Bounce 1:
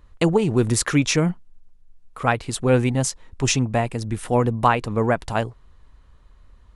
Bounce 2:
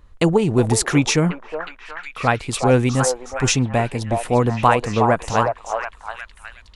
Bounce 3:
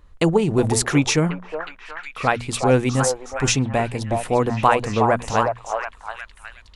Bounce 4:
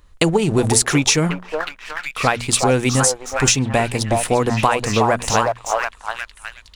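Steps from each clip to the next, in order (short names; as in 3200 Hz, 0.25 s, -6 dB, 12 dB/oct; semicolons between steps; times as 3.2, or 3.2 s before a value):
delay with a stepping band-pass 0.364 s, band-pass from 720 Hz, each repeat 0.7 oct, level -1.5 dB; gain +2 dB
notches 60/120/180/240 Hz; gain -1 dB
high shelf 2700 Hz +9.5 dB; sample leveller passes 1; compressor, threshold -13 dBFS, peak gain reduction 8 dB; gain +1 dB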